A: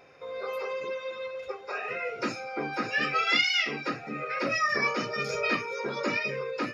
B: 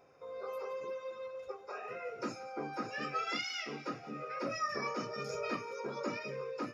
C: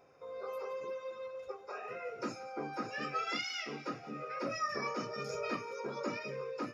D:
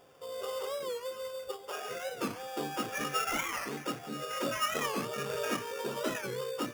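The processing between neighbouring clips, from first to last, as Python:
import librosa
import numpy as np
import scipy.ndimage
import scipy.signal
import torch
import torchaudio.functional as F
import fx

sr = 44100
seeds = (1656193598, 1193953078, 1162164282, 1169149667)

y1 = fx.band_shelf(x, sr, hz=2700.0, db=-8.0, octaves=1.7)
y1 = fx.echo_thinned(y1, sr, ms=176, feedback_pct=59, hz=1100.0, wet_db=-17)
y1 = y1 * 10.0 ** (-7.0 / 20.0)
y2 = y1
y3 = fx.sample_hold(y2, sr, seeds[0], rate_hz=4100.0, jitter_pct=0)
y3 = fx.record_warp(y3, sr, rpm=45.0, depth_cents=160.0)
y3 = y3 * 10.0 ** (4.0 / 20.0)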